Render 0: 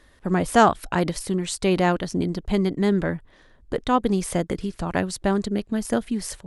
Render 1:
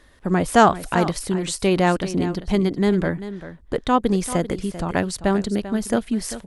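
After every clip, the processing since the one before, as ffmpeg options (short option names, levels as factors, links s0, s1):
-af "aecho=1:1:392:0.211,volume=1.26"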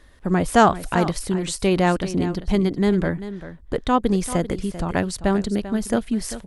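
-af "lowshelf=f=95:g=6,volume=0.891"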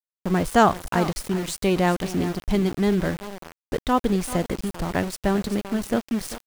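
-af "aeval=exprs='val(0)*gte(abs(val(0)),0.0398)':c=same,volume=0.794"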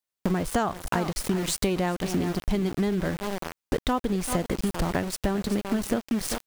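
-af "acompressor=threshold=0.0355:ratio=10,volume=2.24"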